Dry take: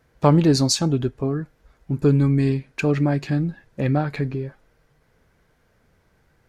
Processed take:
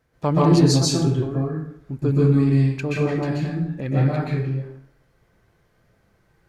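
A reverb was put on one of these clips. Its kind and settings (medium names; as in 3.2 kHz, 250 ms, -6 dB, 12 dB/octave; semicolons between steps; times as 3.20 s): plate-style reverb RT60 0.7 s, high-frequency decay 0.7×, pre-delay 115 ms, DRR -5 dB; trim -6.5 dB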